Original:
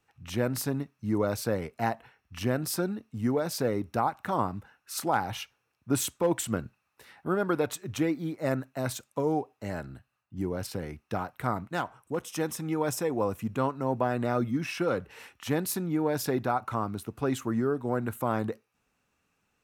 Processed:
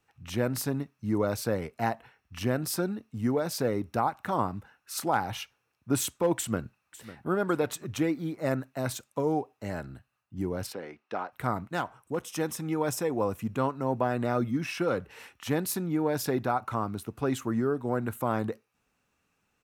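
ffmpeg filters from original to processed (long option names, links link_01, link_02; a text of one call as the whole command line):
ffmpeg -i in.wav -filter_complex "[0:a]asplit=2[link_01][link_02];[link_02]afade=type=in:start_time=6.37:duration=0.01,afade=type=out:start_time=7.3:duration=0.01,aecho=0:1:550|1100|1650:0.158489|0.0554713|0.0194149[link_03];[link_01][link_03]amix=inputs=2:normalize=0,asplit=3[link_04][link_05][link_06];[link_04]afade=type=out:start_time=10.72:duration=0.02[link_07];[link_05]highpass=340,lowpass=4100,afade=type=in:start_time=10.72:duration=0.02,afade=type=out:start_time=11.31:duration=0.02[link_08];[link_06]afade=type=in:start_time=11.31:duration=0.02[link_09];[link_07][link_08][link_09]amix=inputs=3:normalize=0" out.wav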